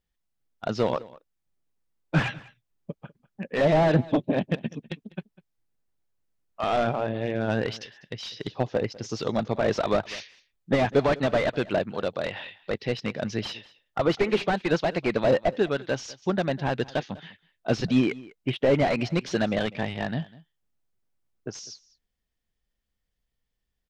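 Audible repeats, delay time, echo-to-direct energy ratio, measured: 1, 199 ms, -21.0 dB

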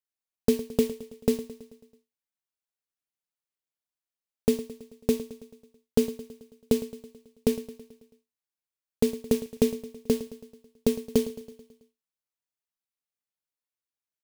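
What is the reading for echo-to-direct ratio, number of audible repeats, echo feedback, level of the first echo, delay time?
-13.5 dB, 5, 58%, -15.5 dB, 109 ms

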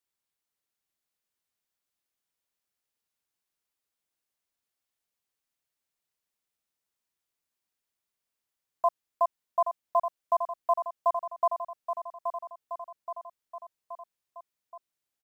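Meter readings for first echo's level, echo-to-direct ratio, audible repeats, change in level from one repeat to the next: -7.5 dB, -6.0 dB, 4, -4.5 dB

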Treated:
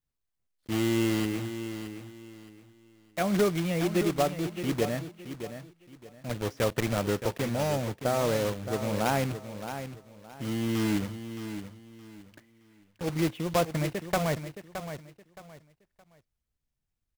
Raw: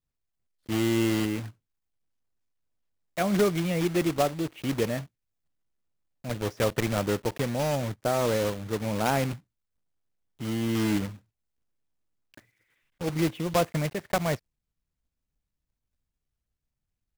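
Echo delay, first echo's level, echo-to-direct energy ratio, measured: 619 ms, -10.0 dB, -9.5 dB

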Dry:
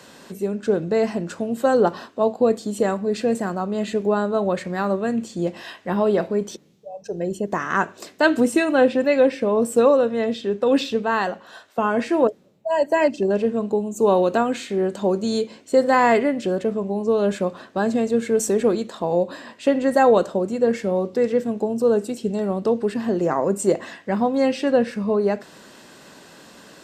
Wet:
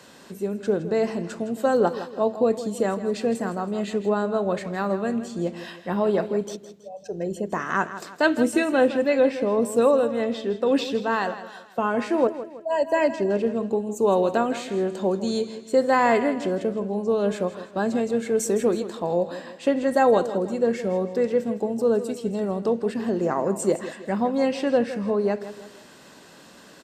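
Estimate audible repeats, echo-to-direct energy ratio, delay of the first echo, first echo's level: 3, -12.0 dB, 162 ms, -13.0 dB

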